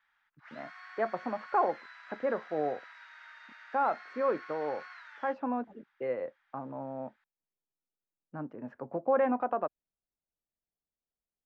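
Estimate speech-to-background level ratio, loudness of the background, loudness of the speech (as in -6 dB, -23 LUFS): 15.0 dB, -49.0 LUFS, -34.0 LUFS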